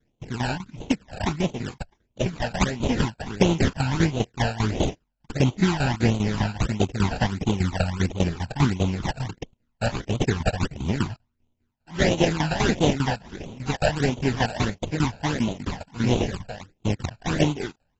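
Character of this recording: tremolo saw down 5 Hz, depth 80%; aliases and images of a low sample rate 1200 Hz, jitter 20%; phasing stages 12, 1.5 Hz, lowest notch 340–1700 Hz; AAC

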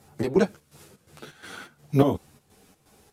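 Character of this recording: chopped level 2.8 Hz, depth 65%, duty 65%; a shimmering, thickened sound

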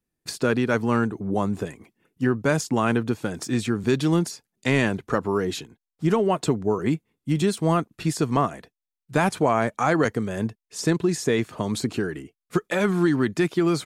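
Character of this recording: noise floor -87 dBFS; spectral tilt -5.5 dB/oct

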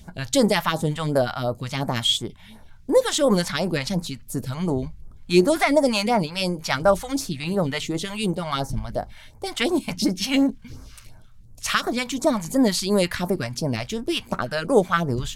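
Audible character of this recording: phasing stages 2, 2.8 Hz, lowest notch 320–3000 Hz

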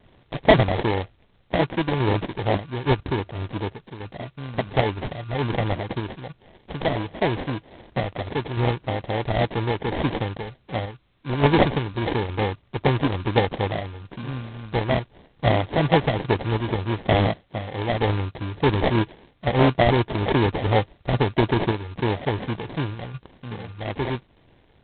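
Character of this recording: aliases and images of a low sample rate 1300 Hz, jitter 0%; random-step tremolo; G.726

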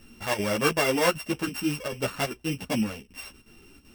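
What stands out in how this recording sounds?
a buzz of ramps at a fixed pitch in blocks of 16 samples; chopped level 2.6 Hz, depth 65%, duty 85%; a shimmering, thickened sound

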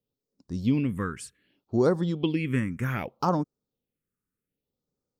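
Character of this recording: phasing stages 4, 0.65 Hz, lowest notch 650–2600 Hz

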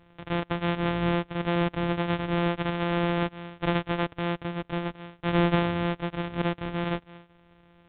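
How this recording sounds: a buzz of ramps at a fixed pitch in blocks of 256 samples; µ-law

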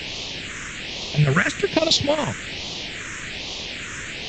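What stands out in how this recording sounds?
chopped level 11 Hz, depth 65%, duty 65%; a quantiser's noise floor 6-bit, dither triangular; phasing stages 4, 1.2 Hz, lowest notch 750–1500 Hz; A-law

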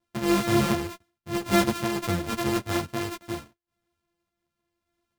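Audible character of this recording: a buzz of ramps at a fixed pitch in blocks of 128 samples; random-step tremolo 3.5 Hz; a shimmering, thickened sound

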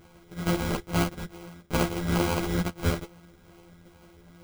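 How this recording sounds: a buzz of ramps at a fixed pitch in blocks of 256 samples; phasing stages 8, 2.3 Hz, lowest notch 700–2400 Hz; aliases and images of a low sample rate 1800 Hz, jitter 0%; a shimmering, thickened sound

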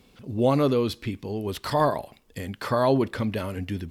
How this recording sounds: noise floor -58 dBFS; spectral tilt -6.0 dB/oct

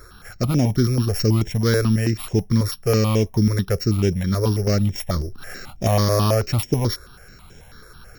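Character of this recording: a buzz of ramps at a fixed pitch in blocks of 8 samples; notches that jump at a steady rate 9.2 Hz 800–4300 Hz

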